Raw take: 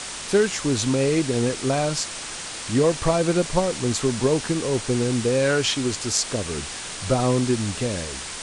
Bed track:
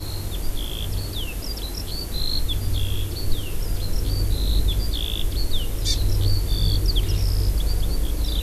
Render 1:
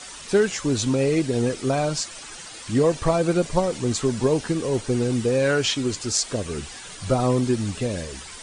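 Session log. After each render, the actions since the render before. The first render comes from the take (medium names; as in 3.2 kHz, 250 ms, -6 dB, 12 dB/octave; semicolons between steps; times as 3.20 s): noise reduction 11 dB, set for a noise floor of -34 dBFS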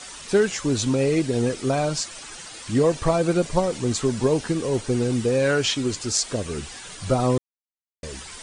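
7.38–8.03 s: mute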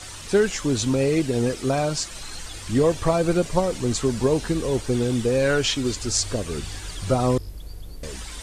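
add bed track -15.5 dB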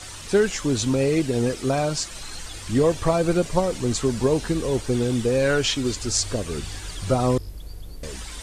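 no audible change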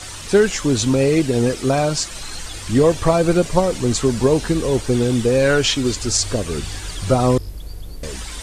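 trim +5 dB; peak limiter -2 dBFS, peak gain reduction 2.5 dB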